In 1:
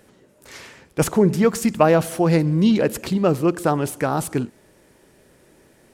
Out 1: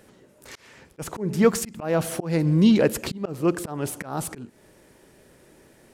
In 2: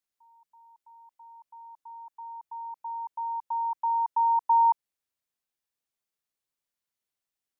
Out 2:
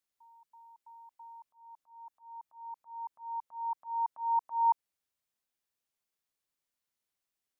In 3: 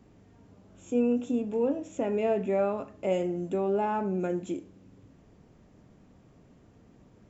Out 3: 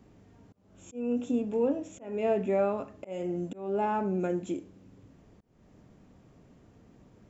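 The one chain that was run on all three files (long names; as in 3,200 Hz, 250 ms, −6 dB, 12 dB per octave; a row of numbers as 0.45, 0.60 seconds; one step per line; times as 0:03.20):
volume swells 295 ms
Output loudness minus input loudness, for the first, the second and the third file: −4.0, −7.0, −1.5 LU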